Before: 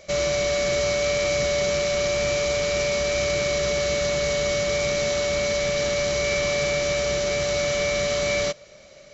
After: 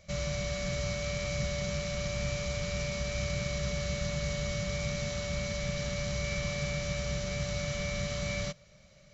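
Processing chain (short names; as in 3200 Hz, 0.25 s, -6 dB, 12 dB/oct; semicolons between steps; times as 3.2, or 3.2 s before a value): EQ curve 180 Hz 0 dB, 330 Hz -18 dB, 1100 Hz -11 dB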